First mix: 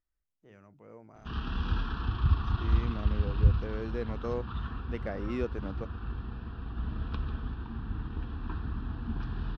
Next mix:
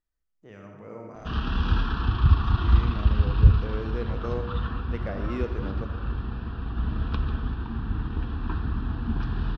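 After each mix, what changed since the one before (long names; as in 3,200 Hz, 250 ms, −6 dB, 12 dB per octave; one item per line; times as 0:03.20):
first voice +5.5 dB
background +7.0 dB
reverb: on, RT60 1.5 s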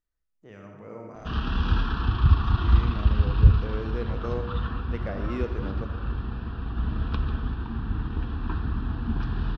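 nothing changed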